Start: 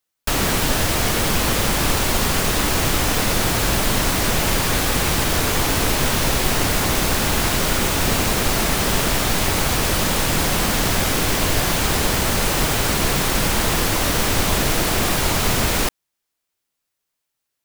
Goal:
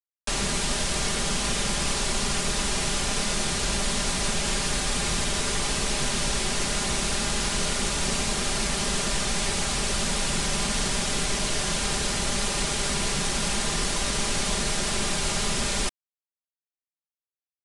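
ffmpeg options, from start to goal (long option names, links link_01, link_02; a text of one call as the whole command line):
ffmpeg -i in.wav -filter_complex "[0:a]aecho=1:1:5:0.64,acrossover=split=150[link_01][link_02];[link_01]alimiter=limit=-18dB:level=0:latency=1:release=190[link_03];[link_03][link_02]amix=inputs=2:normalize=0,acrossover=split=150|3000[link_04][link_05][link_06];[link_05]acompressor=threshold=-34dB:ratio=1.5[link_07];[link_04][link_07][link_06]amix=inputs=3:normalize=0,acrusher=bits=3:mix=0:aa=0.000001,aresample=22050,aresample=44100,volume=-5.5dB" out.wav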